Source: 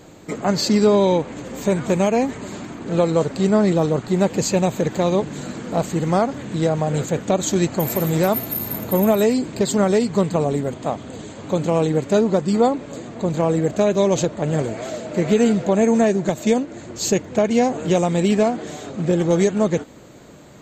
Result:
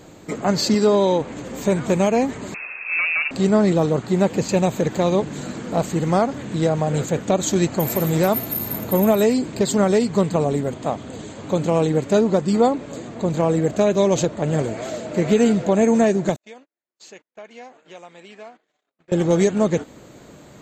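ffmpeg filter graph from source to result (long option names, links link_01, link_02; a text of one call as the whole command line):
ffmpeg -i in.wav -filter_complex "[0:a]asettb=1/sr,asplit=3[link_01][link_02][link_03];[link_01]atrim=end=0.744[link_04];[link_02]atrim=start=0.74:end=1.21,asetpts=PTS-STARTPTS,afade=type=in:duration=0.004:curve=qsin,afade=type=out:start_time=0.466:duration=0.004:curve=qsin,highpass=frequency=210:poles=1,bandreject=frequency=2300:width=9.6[link_05];[link_03]atrim=start=1.206[link_06];[link_04][link_05]acrossfade=duration=0.004:curve1=hsin:curve2=qsin[link_07];[link_07][link_06]acrossfade=duration=0.004:curve1=qsin:curve2=hsin,asettb=1/sr,asplit=3[link_08][link_09][link_10];[link_08]atrim=end=2.544[link_11];[link_09]atrim=start=2.54:end=3.31,asetpts=PTS-STARTPTS,afade=type=in:duration=0.004:curve=qsin,afade=type=out:start_time=0.766:duration=0.004:curve=qsin,asoftclip=type=hard:threshold=-18.5dB,lowpass=frequency=2400:width_type=q:width=0.5098,lowpass=frequency=2400:width_type=q:width=0.6013,lowpass=frequency=2400:width_type=q:width=0.9,lowpass=frequency=2400:width_type=q:width=2.563,afreqshift=-2800[link_12];[link_10]atrim=start=3.306[link_13];[link_11][link_12]acrossfade=duration=0.004:curve1=hsin:curve2=qsin[link_14];[link_14][link_13]acrossfade=duration=0.004:curve1=qsin:curve2=hsin,asettb=1/sr,asplit=3[link_15][link_16][link_17];[link_15]atrim=end=3.844[link_18];[link_16]atrim=start=3.84:end=4.49,asetpts=PTS-STARTPTS,afade=type=in:duration=0.004:curve=qsin,afade=type=out:start_time=0.646:duration=0.004:curve=qsin,highpass=51,acrossover=split=3400[link_19][link_20];[link_20]acompressor=threshold=-36dB:ratio=4:attack=1:release=60[link_21];[link_19][link_21]amix=inputs=2:normalize=0[link_22];[link_17]atrim=start=4.486[link_23];[link_18][link_22]acrossfade=duration=0.004:curve1=hsin:curve2=qsin[link_24];[link_24][link_23]acrossfade=duration=0.004:curve1=qsin:curve2=hsin,asettb=1/sr,asplit=3[link_25][link_26][link_27];[link_25]atrim=end=16.364[link_28];[link_26]atrim=start=16.36:end=19.12,asetpts=PTS-STARTPTS,afade=type=in:duration=0.004:curve=qsin,afade=type=out:start_time=2.756:duration=0.004:curve=qsin,highpass=120,lowpass=2000,aderivative,agate=range=-37dB:threshold=-52dB:ratio=16:release=100:detection=peak[link_29];[link_27]atrim=start=19.116[link_30];[link_28][link_29]acrossfade=duration=0.004:curve1=hsin:curve2=qsin[link_31];[link_31][link_30]acrossfade=duration=0.004:curve1=qsin:curve2=hsin" out.wav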